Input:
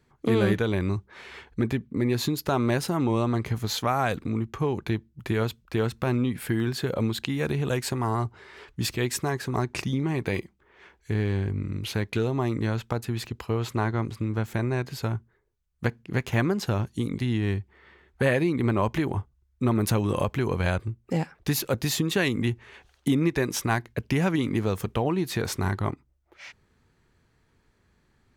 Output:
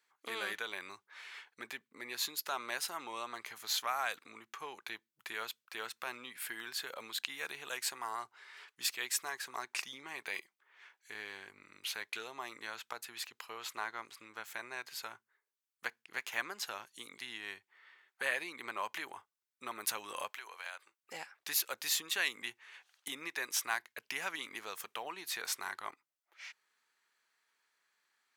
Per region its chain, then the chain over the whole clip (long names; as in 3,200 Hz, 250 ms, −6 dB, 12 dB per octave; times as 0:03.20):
0:20.30–0:21.03: high-pass filter 580 Hz + downward compressor 2 to 1, threshold −37 dBFS
whole clip: high-pass filter 1,200 Hz 12 dB per octave; high-shelf EQ 8,900 Hz +4 dB; level −4.5 dB